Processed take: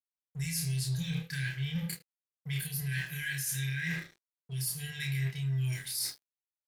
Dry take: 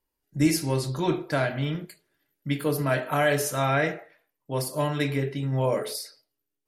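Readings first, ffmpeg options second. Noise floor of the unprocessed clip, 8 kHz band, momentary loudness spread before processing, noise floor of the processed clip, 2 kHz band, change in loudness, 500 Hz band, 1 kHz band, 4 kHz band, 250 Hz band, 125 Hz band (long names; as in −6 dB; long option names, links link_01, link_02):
−83 dBFS, −1.5 dB, 12 LU, below −85 dBFS, −6.0 dB, −7.5 dB, −30.0 dB, below −30 dB, −3.0 dB, −12.0 dB, −3.5 dB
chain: -filter_complex "[0:a]highshelf=frequency=6500:gain=7.5,asplit=2[link_01][link_02];[link_02]adelay=79,lowpass=frequency=3400:poles=1,volume=-16dB,asplit=2[link_03][link_04];[link_04]adelay=79,lowpass=frequency=3400:poles=1,volume=0.51,asplit=2[link_05][link_06];[link_06]adelay=79,lowpass=frequency=3400:poles=1,volume=0.51,asplit=2[link_07][link_08];[link_08]adelay=79,lowpass=frequency=3400:poles=1,volume=0.51,asplit=2[link_09][link_10];[link_10]adelay=79,lowpass=frequency=3400:poles=1,volume=0.51[link_11];[link_01][link_03][link_05][link_07][link_09][link_11]amix=inputs=6:normalize=0,asplit=2[link_12][link_13];[link_13]alimiter=limit=-22dB:level=0:latency=1,volume=-3dB[link_14];[link_12][link_14]amix=inputs=2:normalize=0,afftfilt=real='re*(1-between(b*sr/4096,190,1500))':imag='im*(1-between(b*sr/4096,190,1500))':win_size=4096:overlap=0.75,aeval=exprs='sgn(val(0))*max(abs(val(0))-0.00596,0)':channel_layout=same,equalizer=frequency=350:width_type=o:width=0.43:gain=7,areverse,acompressor=threshold=-35dB:ratio=20,areverse,asplit=2[link_15][link_16];[link_16]adelay=30,volume=-2.5dB[link_17];[link_15][link_17]amix=inputs=2:normalize=0,volume=2dB"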